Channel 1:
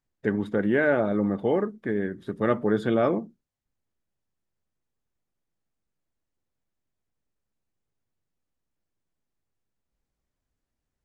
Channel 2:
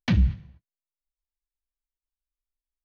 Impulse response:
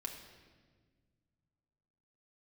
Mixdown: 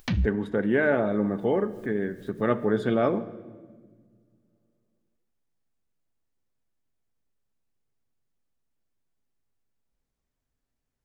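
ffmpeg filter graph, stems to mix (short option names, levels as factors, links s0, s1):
-filter_complex "[0:a]volume=0.668,asplit=3[s0][s1][s2];[s1]volume=0.596[s3];[1:a]acompressor=mode=upward:threshold=0.0631:ratio=2.5,volume=0.562[s4];[s2]apad=whole_len=125546[s5];[s4][s5]sidechaincompress=threshold=0.01:ratio=8:attack=12:release=121[s6];[2:a]atrim=start_sample=2205[s7];[s3][s7]afir=irnorm=-1:irlink=0[s8];[s0][s6][s8]amix=inputs=3:normalize=0"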